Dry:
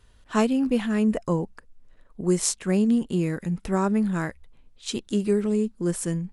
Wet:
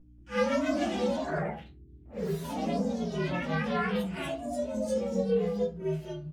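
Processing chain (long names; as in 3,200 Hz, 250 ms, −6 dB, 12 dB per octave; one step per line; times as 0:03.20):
partials spread apart or drawn together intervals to 128%
low-pass filter 8,200 Hz 12 dB per octave
double-tracking delay 26 ms −11.5 dB
echo ahead of the sound 58 ms −12 dB
noise gate with hold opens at −44 dBFS
high-pass filter 570 Hz 6 dB per octave
mains hum 60 Hz, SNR 18 dB
convolution reverb RT60 0.35 s, pre-delay 3 ms, DRR −4 dB
delay with pitch and tempo change per echo 182 ms, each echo +2 semitones, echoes 3
level −7 dB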